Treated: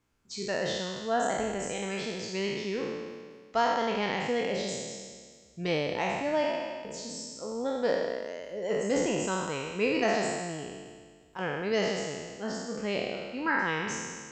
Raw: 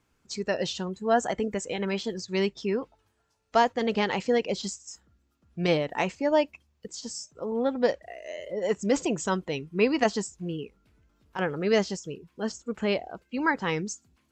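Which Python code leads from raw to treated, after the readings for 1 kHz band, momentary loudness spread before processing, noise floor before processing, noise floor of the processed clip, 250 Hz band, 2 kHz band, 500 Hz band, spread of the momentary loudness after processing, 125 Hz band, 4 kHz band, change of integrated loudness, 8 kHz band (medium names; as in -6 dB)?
-1.5 dB, 14 LU, -72 dBFS, -55 dBFS, -4.0 dB, 0.0 dB, -2.5 dB, 11 LU, -4.0 dB, -1.0 dB, -3.0 dB, 0.0 dB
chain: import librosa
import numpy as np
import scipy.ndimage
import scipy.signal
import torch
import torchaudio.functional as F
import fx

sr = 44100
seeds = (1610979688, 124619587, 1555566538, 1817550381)

y = fx.spec_trails(x, sr, decay_s=1.74)
y = F.gain(torch.from_numpy(y), -7.0).numpy()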